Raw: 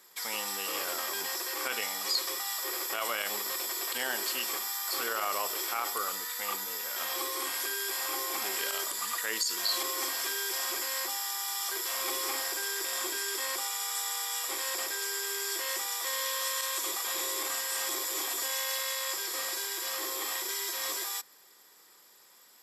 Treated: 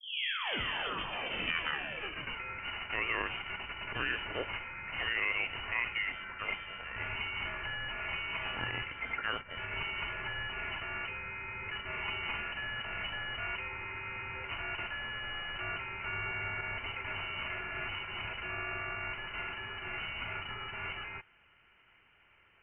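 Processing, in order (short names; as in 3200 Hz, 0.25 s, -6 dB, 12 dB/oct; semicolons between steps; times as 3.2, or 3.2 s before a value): tape start at the beginning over 2.40 s; inverted band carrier 3300 Hz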